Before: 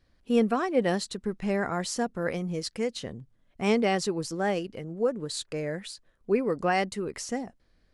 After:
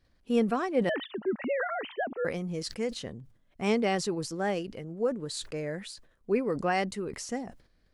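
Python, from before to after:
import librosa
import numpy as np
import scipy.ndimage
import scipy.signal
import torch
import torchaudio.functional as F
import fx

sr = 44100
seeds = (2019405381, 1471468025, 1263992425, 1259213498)

y = fx.sine_speech(x, sr, at=(0.89, 2.25))
y = fx.sustainer(y, sr, db_per_s=120.0)
y = y * librosa.db_to_amplitude(-2.5)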